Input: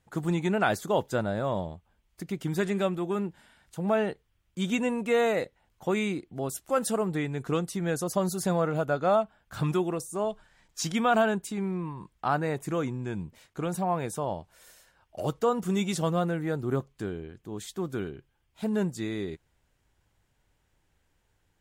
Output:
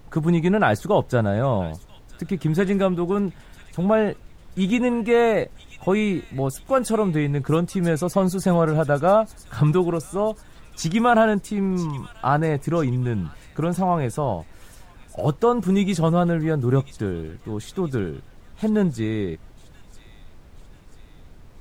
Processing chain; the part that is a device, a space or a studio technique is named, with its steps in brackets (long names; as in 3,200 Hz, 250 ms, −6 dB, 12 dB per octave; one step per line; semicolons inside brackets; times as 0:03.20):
car interior (parametric band 120 Hz +6 dB 0.77 octaves; high-shelf EQ 3,000 Hz −7.5 dB; brown noise bed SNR 21 dB)
delay with a high-pass on its return 987 ms, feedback 50%, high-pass 2,900 Hz, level −12 dB
level +7 dB